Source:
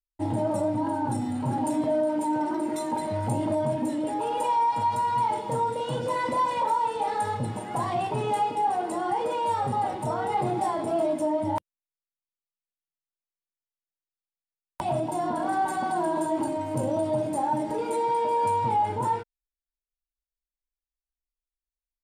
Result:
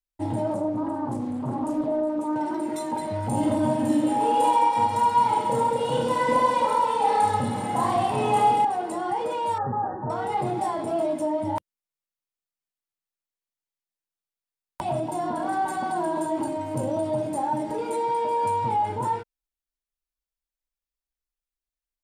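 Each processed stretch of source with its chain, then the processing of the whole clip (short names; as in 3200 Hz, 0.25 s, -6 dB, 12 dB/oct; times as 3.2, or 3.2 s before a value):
0.54–2.36 HPF 440 Hz 6 dB/oct + tilt shelf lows +9 dB, about 670 Hz + Doppler distortion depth 0.3 ms
3.3–8.65 comb 3.9 ms, depth 38% + reverse bouncing-ball echo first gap 30 ms, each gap 1.4×, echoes 6, each echo -2 dB
9.58–10.1 brick-wall FIR low-pass 1900 Hz + notch 660 Hz, Q 7.3
whole clip: dry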